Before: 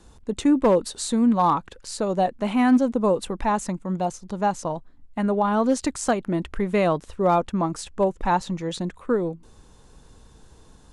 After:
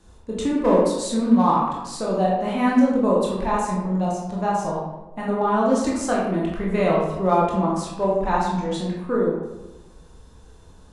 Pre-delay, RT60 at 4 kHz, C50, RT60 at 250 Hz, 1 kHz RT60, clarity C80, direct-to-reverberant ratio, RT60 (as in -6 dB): 17 ms, 0.60 s, 1.0 dB, 1.2 s, 1.0 s, 4.0 dB, -4.5 dB, 1.1 s